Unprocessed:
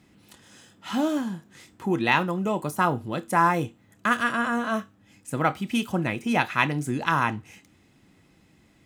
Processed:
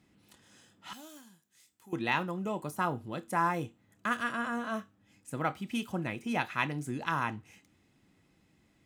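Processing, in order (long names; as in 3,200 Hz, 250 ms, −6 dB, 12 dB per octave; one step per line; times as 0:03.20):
0:00.93–0:01.93: first-order pre-emphasis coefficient 0.9
level −8.5 dB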